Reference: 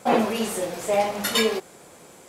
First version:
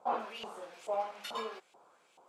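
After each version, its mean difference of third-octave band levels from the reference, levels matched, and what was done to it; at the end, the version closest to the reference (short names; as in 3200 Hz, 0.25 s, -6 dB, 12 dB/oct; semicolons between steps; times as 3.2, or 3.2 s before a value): 8.5 dB: bell 1900 Hz -12.5 dB 0.72 oct; LFO band-pass saw up 2.3 Hz 820–2700 Hz; gain -3.5 dB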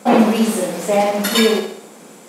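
3.5 dB: resonant low shelf 140 Hz -13 dB, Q 3; on a send: flutter echo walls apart 11.2 m, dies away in 0.62 s; on the sum: gain +4.5 dB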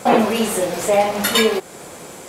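2.5 dB: dynamic EQ 5400 Hz, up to -4 dB, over -41 dBFS, Q 2.2; in parallel at +3 dB: compressor, threshold -34 dBFS, peak gain reduction 17.5 dB; on the sum: gain +4 dB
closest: third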